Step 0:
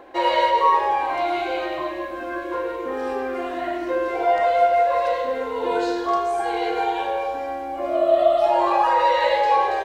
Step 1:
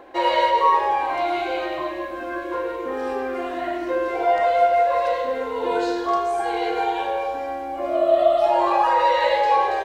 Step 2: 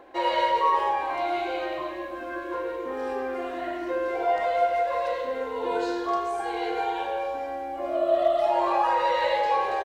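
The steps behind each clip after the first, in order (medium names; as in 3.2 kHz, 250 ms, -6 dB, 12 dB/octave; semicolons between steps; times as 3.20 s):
no audible change
speakerphone echo 130 ms, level -11 dB; trim -5 dB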